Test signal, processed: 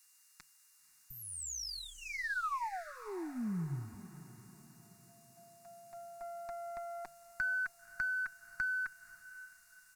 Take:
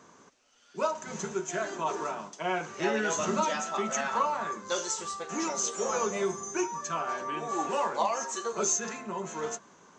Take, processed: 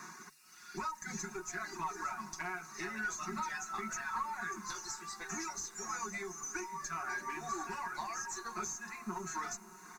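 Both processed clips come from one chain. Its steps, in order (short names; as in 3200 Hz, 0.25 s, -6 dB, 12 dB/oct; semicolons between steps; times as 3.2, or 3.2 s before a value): weighting filter D; reverb removal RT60 1.2 s; notches 50/100/150 Hz; comb 5.5 ms, depth 72%; compressor 10:1, threshold -39 dBFS; whine 2800 Hz -68 dBFS; tube stage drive 34 dB, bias 0.3; added noise violet -58 dBFS; air absorption 60 m; fixed phaser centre 1300 Hz, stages 4; diffused feedback echo 0.533 s, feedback 45%, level -15 dB; gain +8 dB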